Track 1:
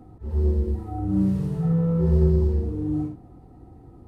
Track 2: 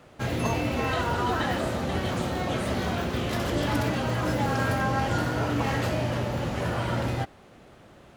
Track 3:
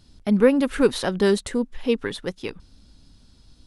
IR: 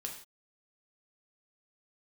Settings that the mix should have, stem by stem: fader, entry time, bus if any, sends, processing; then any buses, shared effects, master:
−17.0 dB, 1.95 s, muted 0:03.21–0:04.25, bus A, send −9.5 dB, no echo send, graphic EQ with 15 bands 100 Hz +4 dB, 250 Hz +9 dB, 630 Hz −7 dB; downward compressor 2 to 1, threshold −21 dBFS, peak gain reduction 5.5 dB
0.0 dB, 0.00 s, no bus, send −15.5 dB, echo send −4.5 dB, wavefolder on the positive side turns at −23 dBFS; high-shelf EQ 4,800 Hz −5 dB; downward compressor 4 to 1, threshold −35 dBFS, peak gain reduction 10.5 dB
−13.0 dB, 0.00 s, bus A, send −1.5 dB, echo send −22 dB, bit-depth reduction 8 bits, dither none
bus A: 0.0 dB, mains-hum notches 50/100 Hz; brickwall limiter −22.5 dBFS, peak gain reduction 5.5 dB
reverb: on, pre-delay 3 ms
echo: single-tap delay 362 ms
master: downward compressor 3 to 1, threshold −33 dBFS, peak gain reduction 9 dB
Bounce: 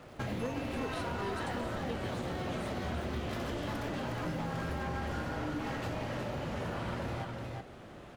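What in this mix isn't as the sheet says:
stem 1: entry 1.95 s → 2.60 s
stem 3 −13.0 dB → −22.0 dB

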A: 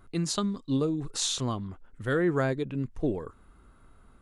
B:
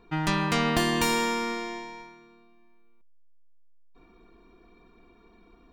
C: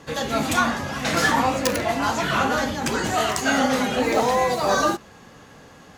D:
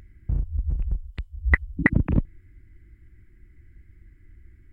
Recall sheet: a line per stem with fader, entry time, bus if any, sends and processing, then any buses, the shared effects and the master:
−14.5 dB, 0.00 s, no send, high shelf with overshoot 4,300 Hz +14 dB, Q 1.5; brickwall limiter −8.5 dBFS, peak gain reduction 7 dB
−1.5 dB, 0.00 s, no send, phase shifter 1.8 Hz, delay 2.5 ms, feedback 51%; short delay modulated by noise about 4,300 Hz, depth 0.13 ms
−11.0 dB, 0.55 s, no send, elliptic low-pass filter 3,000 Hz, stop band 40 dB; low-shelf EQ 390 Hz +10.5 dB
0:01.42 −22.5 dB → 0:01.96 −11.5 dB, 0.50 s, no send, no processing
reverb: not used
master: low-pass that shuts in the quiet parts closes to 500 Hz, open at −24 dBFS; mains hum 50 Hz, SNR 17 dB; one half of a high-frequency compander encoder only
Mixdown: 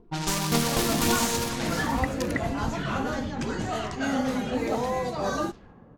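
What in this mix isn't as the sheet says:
stem C: missing elliptic low-pass filter 3,000 Hz, stop band 40 dB
master: missing mains hum 50 Hz, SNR 17 dB

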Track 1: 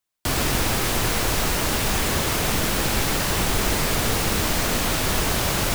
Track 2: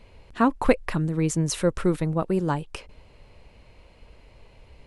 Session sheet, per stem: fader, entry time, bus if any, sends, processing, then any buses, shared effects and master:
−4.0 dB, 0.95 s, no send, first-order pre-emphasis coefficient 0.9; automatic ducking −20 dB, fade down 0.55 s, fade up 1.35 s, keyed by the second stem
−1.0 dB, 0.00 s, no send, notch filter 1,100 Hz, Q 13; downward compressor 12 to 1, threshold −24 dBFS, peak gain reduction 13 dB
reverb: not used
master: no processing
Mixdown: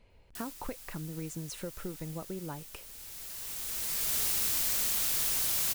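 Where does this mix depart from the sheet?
stem 1: entry 0.95 s → 0.10 s
stem 2 −1.0 dB → −11.0 dB

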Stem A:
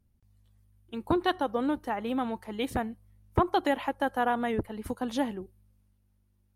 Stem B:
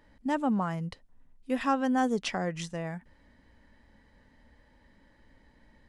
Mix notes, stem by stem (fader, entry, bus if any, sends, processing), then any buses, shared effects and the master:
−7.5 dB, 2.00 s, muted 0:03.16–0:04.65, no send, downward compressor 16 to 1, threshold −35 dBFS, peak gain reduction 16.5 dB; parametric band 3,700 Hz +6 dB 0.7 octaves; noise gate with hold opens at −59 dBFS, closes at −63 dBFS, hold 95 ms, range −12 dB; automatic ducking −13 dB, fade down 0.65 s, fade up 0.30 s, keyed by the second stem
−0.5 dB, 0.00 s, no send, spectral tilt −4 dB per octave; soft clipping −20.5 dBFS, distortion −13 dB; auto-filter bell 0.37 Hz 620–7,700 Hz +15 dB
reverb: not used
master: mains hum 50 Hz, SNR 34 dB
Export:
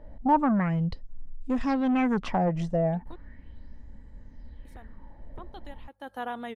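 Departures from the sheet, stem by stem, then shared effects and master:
stem A: missing downward compressor 16 to 1, threshold −35 dBFS, peak gain reduction 16.5 dB
master: missing mains hum 50 Hz, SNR 34 dB

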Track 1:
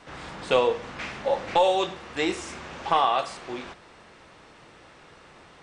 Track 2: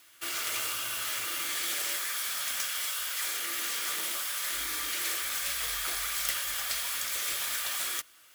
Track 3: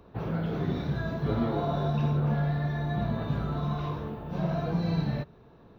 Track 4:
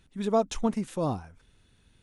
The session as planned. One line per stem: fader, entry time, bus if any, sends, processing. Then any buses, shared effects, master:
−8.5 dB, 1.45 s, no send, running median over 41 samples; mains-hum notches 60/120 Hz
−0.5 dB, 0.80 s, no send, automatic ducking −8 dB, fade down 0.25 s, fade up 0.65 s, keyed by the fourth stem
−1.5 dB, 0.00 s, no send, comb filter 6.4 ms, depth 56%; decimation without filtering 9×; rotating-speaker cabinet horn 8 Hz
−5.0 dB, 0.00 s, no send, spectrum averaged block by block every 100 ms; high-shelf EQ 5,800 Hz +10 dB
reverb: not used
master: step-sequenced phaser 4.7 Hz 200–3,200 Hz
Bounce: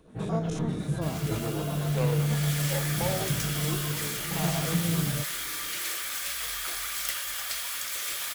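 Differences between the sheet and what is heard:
stem 3: missing decimation without filtering 9×
master: missing step-sequenced phaser 4.7 Hz 200–3,200 Hz

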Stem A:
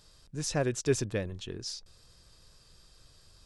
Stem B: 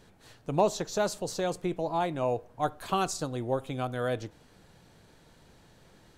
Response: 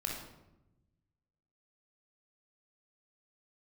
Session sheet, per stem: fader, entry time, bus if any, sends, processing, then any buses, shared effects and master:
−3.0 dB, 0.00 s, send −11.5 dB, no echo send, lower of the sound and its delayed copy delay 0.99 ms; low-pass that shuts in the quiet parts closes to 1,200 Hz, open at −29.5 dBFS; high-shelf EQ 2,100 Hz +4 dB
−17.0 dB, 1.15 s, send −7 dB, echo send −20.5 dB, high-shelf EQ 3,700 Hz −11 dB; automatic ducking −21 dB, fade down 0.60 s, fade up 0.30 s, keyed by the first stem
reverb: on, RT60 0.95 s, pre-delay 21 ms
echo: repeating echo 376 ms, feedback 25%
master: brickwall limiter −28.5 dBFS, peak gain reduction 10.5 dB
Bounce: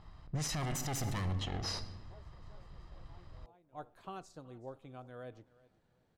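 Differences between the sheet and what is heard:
stem A −3.0 dB → +7.0 dB
stem B: send off

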